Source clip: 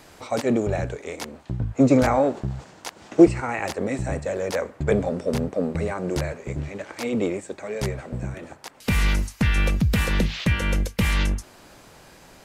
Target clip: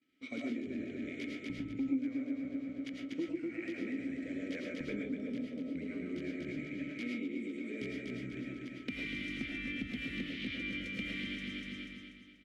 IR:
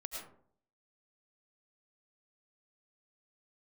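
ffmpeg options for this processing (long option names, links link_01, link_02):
-filter_complex "[0:a]aeval=exprs='val(0)+0.00398*sin(2*PI*1300*n/s)':channel_layout=same,asplit=3[link_01][link_02][link_03];[link_01]bandpass=frequency=270:width_type=q:width=8,volume=0dB[link_04];[link_02]bandpass=frequency=2290:width_type=q:width=8,volume=-6dB[link_05];[link_03]bandpass=frequency=3010:width_type=q:width=8,volume=-9dB[link_06];[link_04][link_05][link_06]amix=inputs=3:normalize=0,agate=range=-33dB:threshold=-48dB:ratio=3:detection=peak,aecho=1:1:243|486|729|972|1215:0.531|0.228|0.0982|0.0422|0.0181,acompressor=threshold=-46dB:ratio=4[link_07];[1:a]atrim=start_sample=2205,afade=type=out:start_time=0.21:duration=0.01,atrim=end_sample=9702[link_08];[link_07][link_08]afir=irnorm=-1:irlink=0,volume=11dB"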